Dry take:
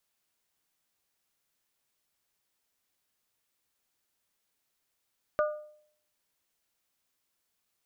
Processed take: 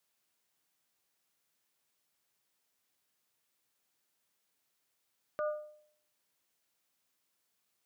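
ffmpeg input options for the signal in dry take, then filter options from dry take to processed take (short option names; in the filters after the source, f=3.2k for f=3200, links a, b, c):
-f lavfi -i "aevalsrc='0.0794*pow(10,-3*t/0.62)*sin(2*PI*604*t)+0.0447*pow(10,-3*t/0.382)*sin(2*PI*1208*t)+0.0251*pow(10,-3*t/0.336)*sin(2*PI*1449.6*t)':d=0.89:s=44100"
-af "highpass=100,alimiter=level_in=4dB:limit=-24dB:level=0:latency=1:release=22,volume=-4dB"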